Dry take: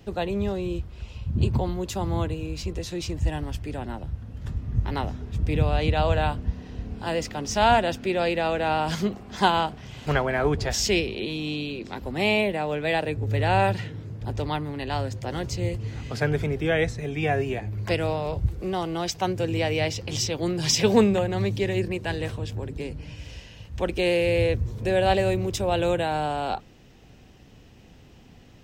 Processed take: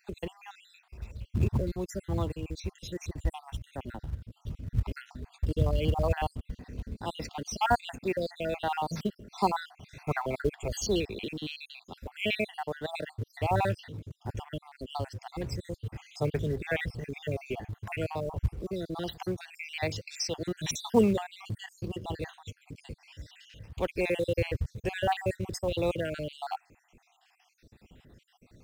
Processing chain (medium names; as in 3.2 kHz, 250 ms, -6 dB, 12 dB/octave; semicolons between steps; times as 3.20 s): random holes in the spectrogram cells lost 60%; in parallel at -7 dB: short-mantissa float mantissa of 2-bit; on the sum: trim -7 dB